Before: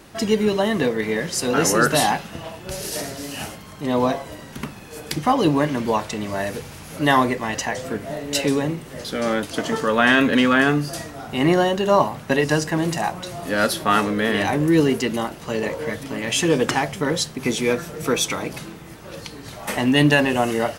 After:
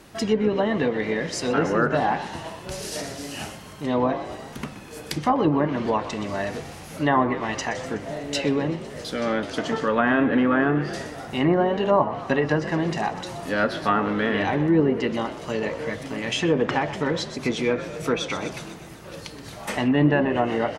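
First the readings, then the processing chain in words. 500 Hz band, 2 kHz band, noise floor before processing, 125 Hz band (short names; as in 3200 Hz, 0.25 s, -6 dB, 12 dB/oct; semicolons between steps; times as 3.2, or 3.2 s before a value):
-2.0 dB, -5.0 dB, -39 dBFS, -2.5 dB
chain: frequency-shifting echo 0.124 s, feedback 60%, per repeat +51 Hz, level -14 dB; treble ducked by the level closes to 1400 Hz, closed at -13 dBFS; gain -2.5 dB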